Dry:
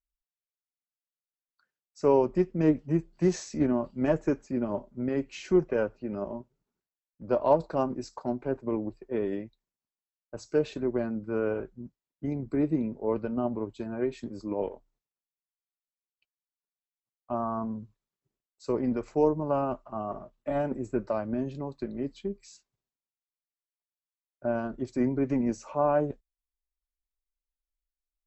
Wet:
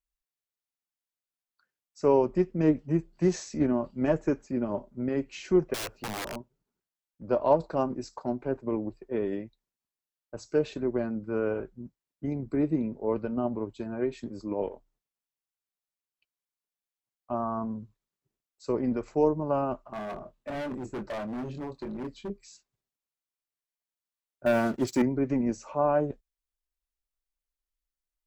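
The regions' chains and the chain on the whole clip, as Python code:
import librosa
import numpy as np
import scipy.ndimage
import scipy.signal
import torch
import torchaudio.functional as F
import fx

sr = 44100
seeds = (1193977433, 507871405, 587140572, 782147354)

y = fx.chain(x, sr, fx.high_shelf(hz=2300.0, db=9.5),
    fx.overflow_wrap(gain_db=29.0), at=(5.74, 6.36))
y = fx.chain(y, sr, fx.doubler(ms=24.0, db=-5.5),
    fx.overload_stage(gain_db=32.0), at=(19.93, 22.3))
y = fx.chain(y, sr, fx.highpass(hz=92.0, slope=12),
    fx.leveller(passes=2),
    fx.high_shelf(hz=2600.0, db=10.5), at=(24.46, 25.02))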